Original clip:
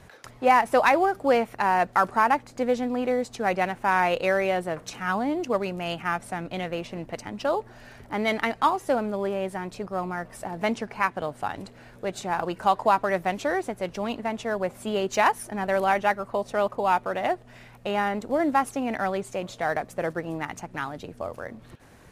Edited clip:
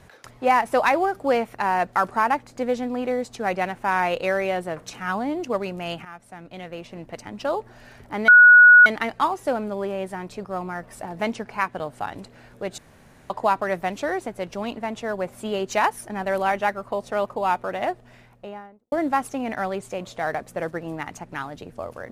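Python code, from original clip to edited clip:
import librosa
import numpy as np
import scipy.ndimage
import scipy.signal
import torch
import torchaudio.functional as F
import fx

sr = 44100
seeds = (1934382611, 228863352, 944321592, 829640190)

y = fx.studio_fade_out(x, sr, start_s=17.32, length_s=1.02)
y = fx.edit(y, sr, fx.fade_in_from(start_s=6.05, length_s=1.42, floor_db=-16.0),
    fx.insert_tone(at_s=8.28, length_s=0.58, hz=1460.0, db=-6.5),
    fx.room_tone_fill(start_s=12.2, length_s=0.52), tone=tone)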